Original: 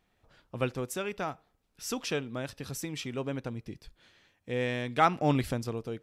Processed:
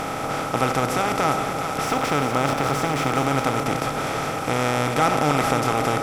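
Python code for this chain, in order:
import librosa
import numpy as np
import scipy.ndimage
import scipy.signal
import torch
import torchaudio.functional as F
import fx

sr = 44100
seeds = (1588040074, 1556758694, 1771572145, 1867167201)

y = fx.bin_compress(x, sr, power=0.2)
y = fx.backlash(y, sr, play_db=-34.0, at=(1.85, 3.22))
y = fx.echo_split(y, sr, split_hz=570.0, low_ms=290, high_ms=407, feedback_pct=52, wet_db=-8)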